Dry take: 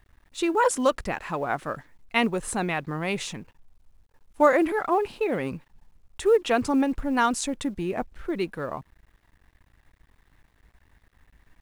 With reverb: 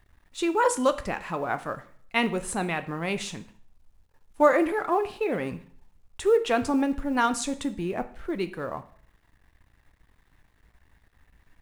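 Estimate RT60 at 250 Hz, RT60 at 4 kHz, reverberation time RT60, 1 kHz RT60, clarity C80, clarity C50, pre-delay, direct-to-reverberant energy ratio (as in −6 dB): 0.50 s, 0.50 s, 0.55 s, 0.55 s, 18.5 dB, 15.0 dB, 5 ms, 10.0 dB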